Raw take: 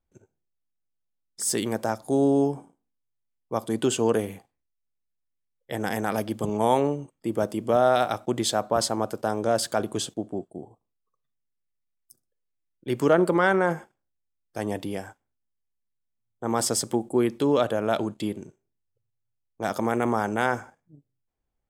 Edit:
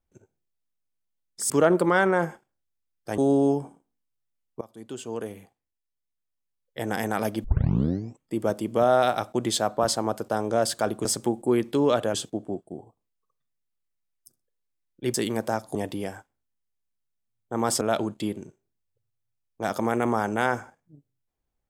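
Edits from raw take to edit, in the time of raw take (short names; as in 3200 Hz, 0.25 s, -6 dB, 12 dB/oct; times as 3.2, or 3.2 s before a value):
1.5–2.11 swap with 12.98–14.66
3.54–5.79 fade in, from -22 dB
6.37 tape start 0.78 s
16.72–17.81 move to 9.98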